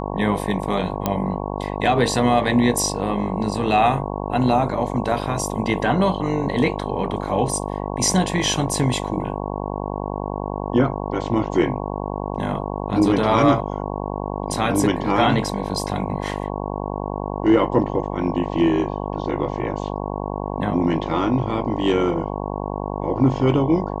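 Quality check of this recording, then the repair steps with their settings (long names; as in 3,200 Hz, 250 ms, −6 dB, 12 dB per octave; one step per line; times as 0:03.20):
mains buzz 50 Hz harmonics 22 −27 dBFS
0:01.06: click −6 dBFS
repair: click removal
hum removal 50 Hz, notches 22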